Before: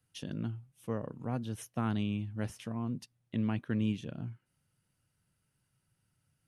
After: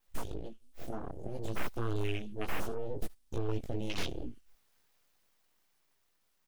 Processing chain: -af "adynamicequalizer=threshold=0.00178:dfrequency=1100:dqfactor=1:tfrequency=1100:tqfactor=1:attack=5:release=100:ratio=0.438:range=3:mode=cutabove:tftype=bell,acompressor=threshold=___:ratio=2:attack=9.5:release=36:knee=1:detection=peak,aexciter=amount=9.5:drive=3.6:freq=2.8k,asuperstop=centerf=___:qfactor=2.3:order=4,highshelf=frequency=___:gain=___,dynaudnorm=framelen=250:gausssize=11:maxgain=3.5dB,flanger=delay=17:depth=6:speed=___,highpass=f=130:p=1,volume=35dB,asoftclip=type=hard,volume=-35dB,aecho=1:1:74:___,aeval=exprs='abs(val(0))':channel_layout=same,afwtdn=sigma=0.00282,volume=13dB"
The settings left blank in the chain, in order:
-52dB, 780, 8.3k, -6.5, 0.6, 0.0841